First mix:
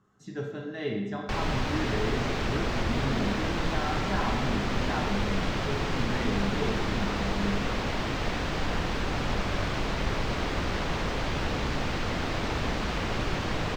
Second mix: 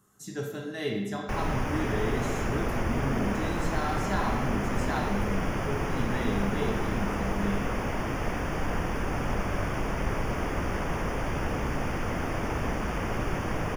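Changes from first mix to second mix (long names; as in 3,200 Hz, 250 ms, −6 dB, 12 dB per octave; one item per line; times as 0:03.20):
background: add moving average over 11 samples
master: remove high-frequency loss of the air 180 metres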